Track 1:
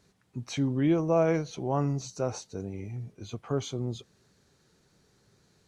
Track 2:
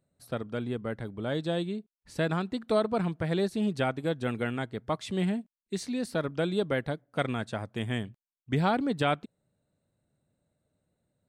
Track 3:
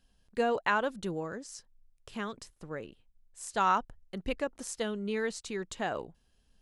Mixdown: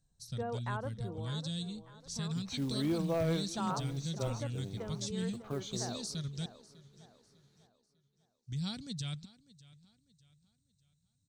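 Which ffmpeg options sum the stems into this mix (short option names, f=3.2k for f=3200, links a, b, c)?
-filter_complex "[0:a]acrusher=bits=6:mode=log:mix=0:aa=0.000001,adelay=2000,volume=-8dB,asplit=2[a][b];[b]volume=-20dB[c];[1:a]firequalizer=gain_entry='entry(140,0);entry(300,-23);entry(650,-28);entry(5800,12);entry(11000,-7)':delay=0.05:min_phase=1,alimiter=level_in=7.5dB:limit=-24dB:level=0:latency=1,volume=-7.5dB,volume=1dB,asplit=3[d][e][f];[d]atrim=end=6.46,asetpts=PTS-STARTPTS,afade=t=out:st=6.456:d=0.004:c=hsin[g];[e]atrim=start=6.46:end=8.19,asetpts=PTS-STARTPTS,volume=0[h];[f]atrim=start=8.19,asetpts=PTS-STARTPTS,afade=t=in:d=0.004:c=hsin[i];[g][h][i]concat=n=3:v=0:a=1,asplit=2[j][k];[k]volume=-20.5dB[l];[2:a]lowpass=1.3k,acontrast=34,volume=-15dB,asplit=3[m][n][o];[n]volume=-12.5dB[p];[o]apad=whole_len=338258[q];[a][q]sidechaincompress=threshold=-42dB:ratio=8:attack=43:release=390[r];[c][l][p]amix=inputs=3:normalize=0,aecho=0:1:599|1198|1797|2396|2995:1|0.37|0.137|0.0507|0.0187[s];[r][j][m][s]amix=inputs=4:normalize=0,equalizer=f=3.8k:w=3.2:g=5.5,asoftclip=type=hard:threshold=-25dB"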